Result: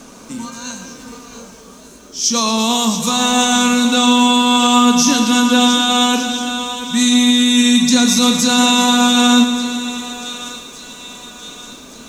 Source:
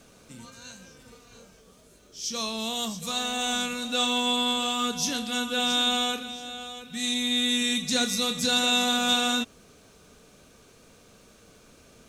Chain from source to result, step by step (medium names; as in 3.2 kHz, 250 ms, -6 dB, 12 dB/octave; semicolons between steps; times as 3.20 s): fifteen-band graphic EQ 100 Hz -11 dB, 250 Hz +10 dB, 1 kHz +9 dB, 6.3 kHz +6 dB; thinning echo 1169 ms, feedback 53%, high-pass 1.1 kHz, level -18 dB; loudness maximiser +15 dB; bit-crushed delay 115 ms, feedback 80%, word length 7-bit, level -12.5 dB; trim -3.5 dB